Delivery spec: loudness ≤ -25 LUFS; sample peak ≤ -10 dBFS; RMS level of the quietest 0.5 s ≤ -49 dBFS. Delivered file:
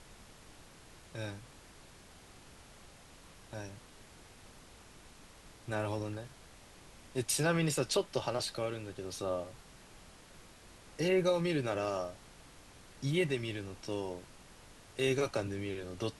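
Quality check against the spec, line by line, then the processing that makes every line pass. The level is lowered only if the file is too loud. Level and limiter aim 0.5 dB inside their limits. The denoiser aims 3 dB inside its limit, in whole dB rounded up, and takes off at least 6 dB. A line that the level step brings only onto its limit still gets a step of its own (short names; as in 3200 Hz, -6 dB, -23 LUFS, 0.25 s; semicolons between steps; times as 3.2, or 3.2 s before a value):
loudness -35.0 LUFS: OK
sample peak -18.5 dBFS: OK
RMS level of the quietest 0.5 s -56 dBFS: OK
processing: none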